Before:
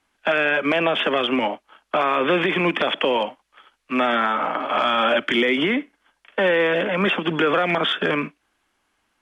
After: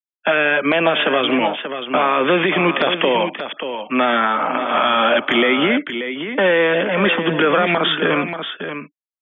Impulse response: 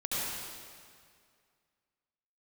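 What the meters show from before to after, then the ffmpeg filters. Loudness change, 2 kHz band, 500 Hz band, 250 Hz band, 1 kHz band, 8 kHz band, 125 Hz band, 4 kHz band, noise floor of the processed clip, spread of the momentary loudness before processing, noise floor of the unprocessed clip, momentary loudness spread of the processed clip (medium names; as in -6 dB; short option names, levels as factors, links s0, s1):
+3.5 dB, +4.0 dB, +4.0 dB, +4.0 dB, +4.0 dB, no reading, +4.0 dB, +4.0 dB, under -85 dBFS, 7 LU, -71 dBFS, 10 LU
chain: -af "afftfilt=real='re*gte(hypot(re,im),0.0112)':imag='im*gte(hypot(re,im),0.0112)':win_size=1024:overlap=0.75,aecho=1:1:584:0.355,volume=1.5"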